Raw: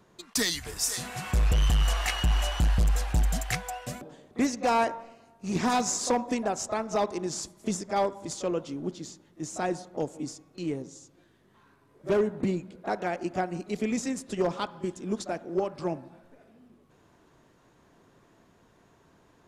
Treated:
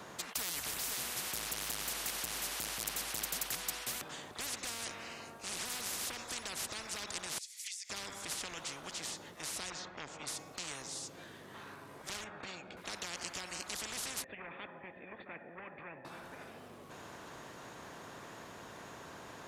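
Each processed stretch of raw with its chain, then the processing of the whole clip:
0:07.38–0:07.90: elliptic high-pass filter 2,100 Hz, stop band 80 dB + downward compressor 12 to 1, threshold −51 dBFS
0:09.70–0:10.27: high-frequency loss of the air 180 metres + saturating transformer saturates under 570 Hz
0:12.24–0:12.77: head-to-tape spacing loss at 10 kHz 23 dB + notch comb filter 1,000 Hz
0:14.24–0:16.05: leveller curve on the samples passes 1 + formant resonators in series e
whole clip: high-pass filter 220 Hz 6 dB per octave; brickwall limiter −23 dBFS; every bin compressed towards the loudest bin 10 to 1; level +3 dB

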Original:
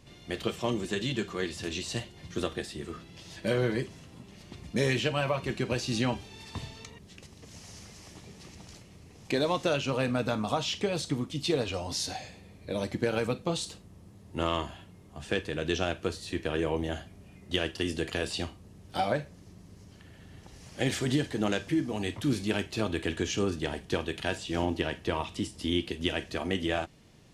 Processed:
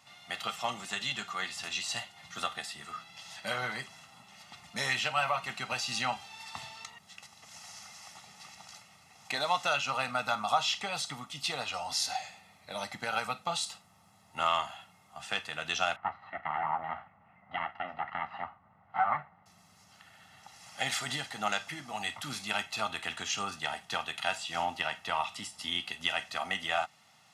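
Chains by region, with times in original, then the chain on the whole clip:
0:15.96–0:19.46: lower of the sound and its delayed copy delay 1 ms + low-pass filter 1,900 Hz 24 dB per octave
whole clip: high-pass filter 190 Hz 12 dB per octave; low shelf with overshoot 670 Hz −9.5 dB, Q 3; comb filter 1.5 ms, depth 67%

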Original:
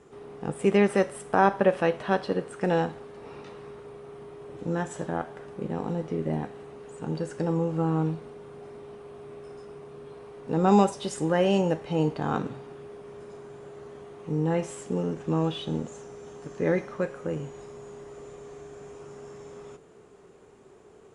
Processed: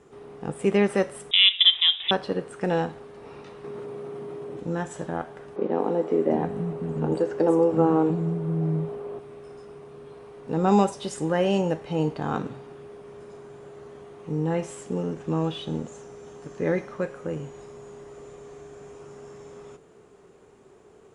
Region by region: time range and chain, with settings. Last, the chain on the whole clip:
0:01.31–0:02.11: spectral tilt −3 dB per octave + voice inversion scrambler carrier 3,700 Hz
0:03.64–0:04.60: high-pass filter 180 Hz + low-shelf EQ 440 Hz +10 dB + envelope flattener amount 100%
0:05.56–0:09.19: parametric band 440 Hz +10 dB 2.9 octaves + three-band delay without the direct sound mids, highs, lows 230/700 ms, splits 210/5,800 Hz
whole clip: no processing

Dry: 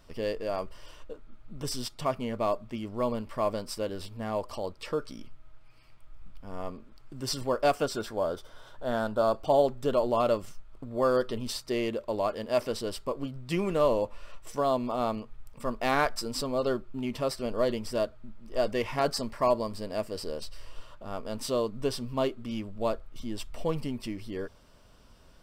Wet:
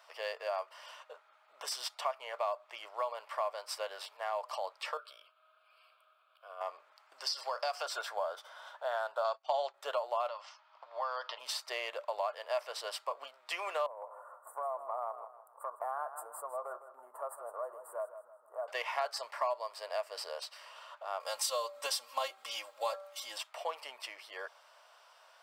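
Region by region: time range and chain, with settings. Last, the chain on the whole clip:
0:04.97–0:06.61: phaser with its sweep stopped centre 1,300 Hz, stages 8 + downward compressor 2.5 to 1, threshold −39 dBFS
0:07.18–0:07.86: high-pass filter 240 Hz + parametric band 4,900 Hz +14.5 dB 0.48 octaves + downward compressor 3 to 1, threshold −27 dBFS
0:09.24–0:09.74: low-pass filter 6,300 Hz 24 dB per octave + high-shelf EQ 2,100 Hz +11.5 dB + downward expander −29 dBFS
0:10.28–0:11.39: downward compressor 3 to 1, threshold −30 dBFS + loudspeaker in its box 400–5,600 Hz, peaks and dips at 420 Hz −9 dB, 950 Hz +6 dB, 3,100 Hz +3 dB, 5,000 Hz +6 dB
0:13.86–0:18.68: elliptic band-stop filter 1,300–9,100 Hz + downward compressor, threshold −33 dBFS + repeating echo 159 ms, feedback 37%, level −12.5 dB
0:21.20–0:23.38: bass and treble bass +1 dB, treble +12 dB + comb filter 3.7 ms, depth 88% + hum removal 193.8 Hz, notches 8
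whole clip: Butterworth high-pass 650 Hz 36 dB per octave; high-shelf EQ 3,600 Hz −9 dB; downward compressor 3 to 1, threshold −39 dBFS; level +5.5 dB

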